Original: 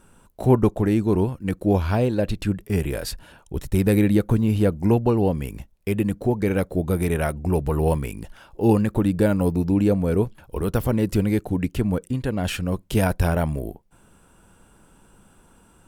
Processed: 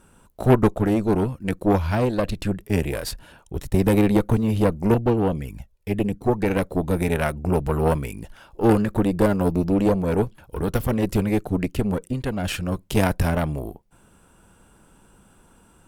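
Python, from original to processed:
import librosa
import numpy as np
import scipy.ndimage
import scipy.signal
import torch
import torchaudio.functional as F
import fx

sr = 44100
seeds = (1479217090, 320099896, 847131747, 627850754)

y = fx.env_flanger(x, sr, rest_ms=2.6, full_db=-17.0, at=(4.94, 6.26))
y = fx.cheby_harmonics(y, sr, harmonics=(6,), levels_db=(-16,), full_scale_db=-4.0)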